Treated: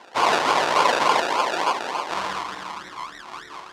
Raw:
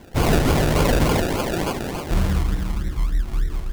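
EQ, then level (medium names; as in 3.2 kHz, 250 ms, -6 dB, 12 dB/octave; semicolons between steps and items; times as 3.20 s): band-pass 520–4600 Hz; peaking EQ 1 kHz +11.5 dB 0.7 oct; treble shelf 2.6 kHz +9 dB; -1.0 dB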